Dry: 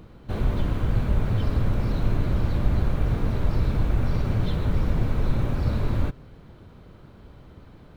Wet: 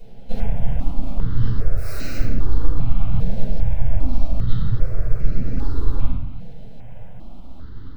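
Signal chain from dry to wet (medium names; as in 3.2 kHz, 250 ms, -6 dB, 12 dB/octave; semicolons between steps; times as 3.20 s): 1.76–2.18 s: tilt EQ +4.5 dB/octave; 4.15–4.69 s: comb 1.6 ms; compression 5:1, threshold -27 dBFS, peak gain reduction 12 dB; flange 0.52 Hz, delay 2.7 ms, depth 5 ms, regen -28%; half-wave rectifier; simulated room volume 210 m³, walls mixed, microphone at 5.1 m; stepped phaser 2.5 Hz 320–3400 Hz; trim -1 dB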